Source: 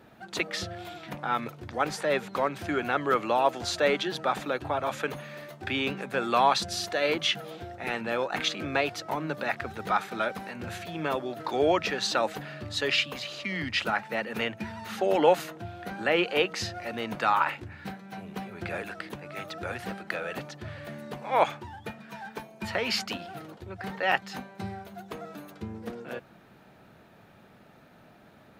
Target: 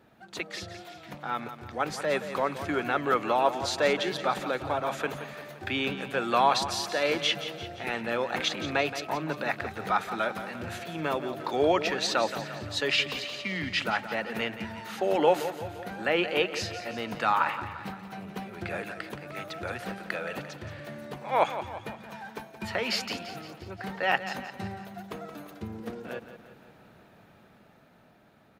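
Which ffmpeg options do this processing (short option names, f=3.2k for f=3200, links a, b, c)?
-filter_complex "[0:a]dynaudnorm=f=380:g=9:m=5.5dB,asplit=2[a][b];[b]aecho=0:1:173|346|519|692|865|1038:0.266|0.141|0.0747|0.0396|0.021|0.0111[c];[a][c]amix=inputs=2:normalize=0,volume=-5.5dB"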